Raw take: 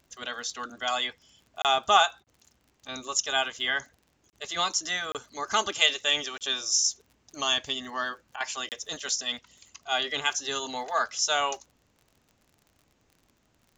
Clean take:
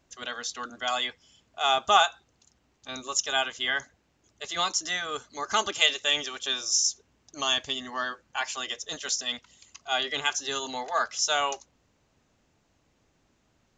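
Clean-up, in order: de-click; interpolate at 1.62/2.24/4.3/5.12/6.38/8.69, 28 ms; interpolate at 2.23/8.36, 41 ms

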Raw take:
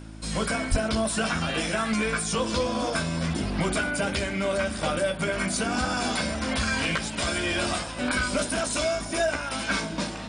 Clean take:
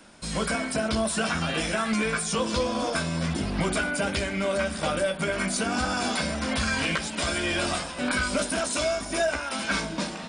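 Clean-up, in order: de-hum 54.1 Hz, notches 6; 0.7–0.82 HPF 140 Hz 24 dB/oct

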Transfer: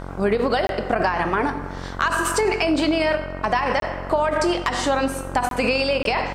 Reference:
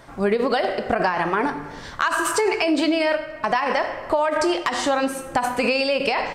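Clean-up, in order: de-hum 45.7 Hz, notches 34; interpolate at 0.67/3.8/5.49/6.03, 22 ms

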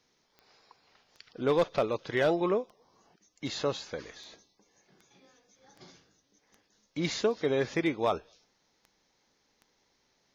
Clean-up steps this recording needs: clip repair -18 dBFS; de-click

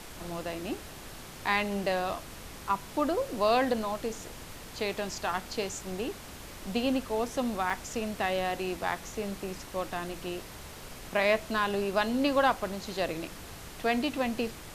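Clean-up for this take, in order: interpolate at 7.7, 3.6 ms; denoiser 30 dB, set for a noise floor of -45 dBFS

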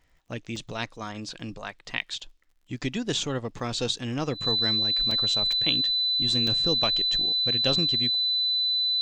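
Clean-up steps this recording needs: de-click; notch 4000 Hz, Q 30; interpolate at 0.56/2.01/3.59/5.11/5.52/6.47, 3.3 ms

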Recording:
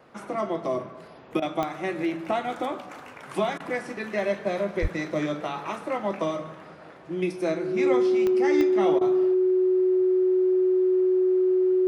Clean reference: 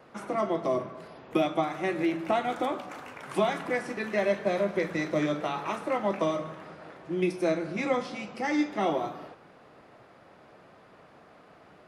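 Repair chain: de-click; notch 370 Hz, Q 30; 4.81–4.93 HPF 140 Hz 24 dB/oct; interpolate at 1.4/3.58/8.99, 20 ms

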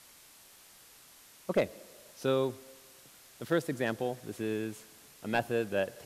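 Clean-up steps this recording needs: clip repair -18.5 dBFS; denoiser 20 dB, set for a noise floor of -57 dBFS

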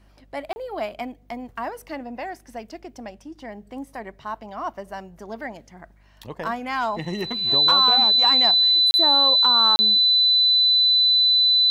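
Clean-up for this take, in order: de-hum 49.8 Hz, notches 5; notch 4000 Hz, Q 30; interpolate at 0.53/8.91/9.76, 30 ms

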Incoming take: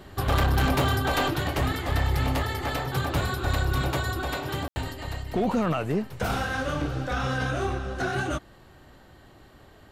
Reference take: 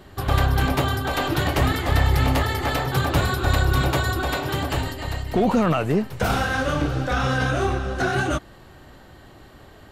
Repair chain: clip repair -18 dBFS; room tone fill 4.68–4.76; gain 0 dB, from 1.3 s +5.5 dB

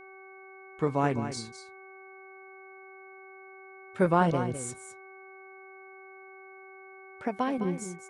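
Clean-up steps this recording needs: de-hum 382.9 Hz, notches 4; notch 2200 Hz, Q 30; inverse comb 0.208 s -10.5 dB

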